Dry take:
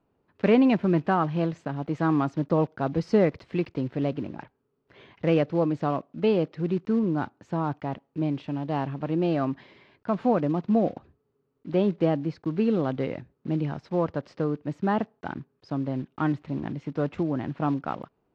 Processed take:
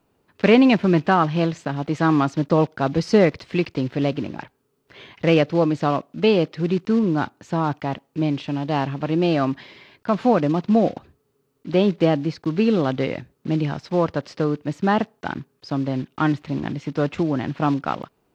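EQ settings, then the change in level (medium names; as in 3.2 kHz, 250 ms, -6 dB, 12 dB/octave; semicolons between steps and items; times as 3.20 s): treble shelf 2.5 kHz +11.5 dB; +5.0 dB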